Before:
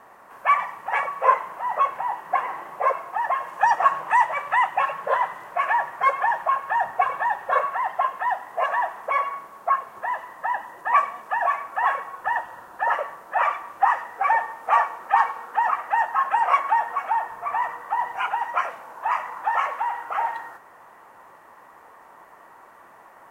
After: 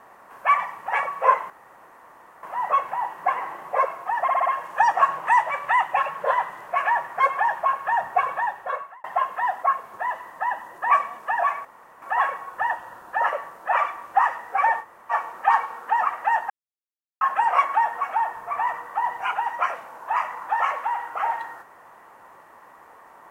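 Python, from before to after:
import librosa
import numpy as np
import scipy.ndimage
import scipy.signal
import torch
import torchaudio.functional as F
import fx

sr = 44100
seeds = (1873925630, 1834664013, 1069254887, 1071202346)

y = fx.edit(x, sr, fx.insert_room_tone(at_s=1.5, length_s=0.93),
    fx.stutter(start_s=3.29, slice_s=0.06, count=5),
    fx.fade_out_span(start_s=7.14, length_s=0.73),
    fx.cut(start_s=8.46, length_s=1.2),
    fx.insert_room_tone(at_s=11.68, length_s=0.37),
    fx.room_tone_fill(start_s=14.49, length_s=0.29, crossfade_s=0.06),
    fx.insert_silence(at_s=16.16, length_s=0.71), tone=tone)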